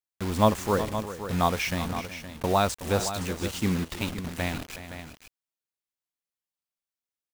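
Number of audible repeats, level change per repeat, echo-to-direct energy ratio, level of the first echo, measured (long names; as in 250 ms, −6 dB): 2, repeats not evenly spaced, −9.0 dB, −13.0 dB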